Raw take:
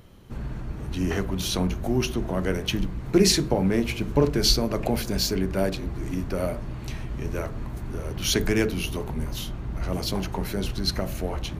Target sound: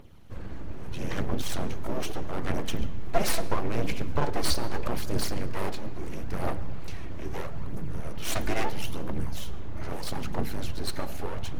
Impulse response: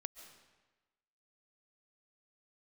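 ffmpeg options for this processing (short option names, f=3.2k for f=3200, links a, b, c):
-filter_complex "[0:a]aphaser=in_gain=1:out_gain=1:delay=3.6:decay=0.56:speed=0.77:type=triangular,aeval=exprs='abs(val(0))':c=same,asplit=2[a][b];[1:a]atrim=start_sample=2205,asetrate=57330,aresample=44100,highshelf=f=7k:g=-11.5[c];[b][c]afir=irnorm=-1:irlink=0,volume=3dB[d];[a][d]amix=inputs=2:normalize=0,volume=-9dB"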